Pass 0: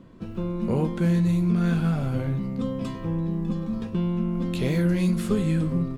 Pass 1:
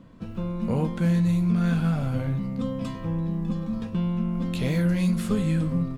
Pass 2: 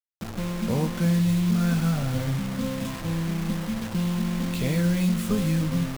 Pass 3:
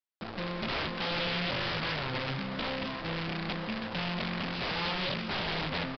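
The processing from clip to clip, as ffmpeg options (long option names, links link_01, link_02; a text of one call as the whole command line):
ffmpeg -i in.wav -af "equalizer=frequency=370:width=5.6:gain=-11.5" out.wav
ffmpeg -i in.wav -af "acrusher=bits=5:mix=0:aa=0.000001" out.wav
ffmpeg -i in.wav -af "bass=frequency=250:gain=-11,treble=frequency=4000:gain=-2,aeval=exprs='(mod(22.4*val(0)+1,2)-1)/22.4':channel_layout=same,aresample=11025,aresample=44100" out.wav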